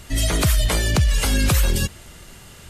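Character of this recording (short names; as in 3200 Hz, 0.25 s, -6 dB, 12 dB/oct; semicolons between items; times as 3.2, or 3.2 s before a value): noise floor -44 dBFS; spectral tilt -4.0 dB/oct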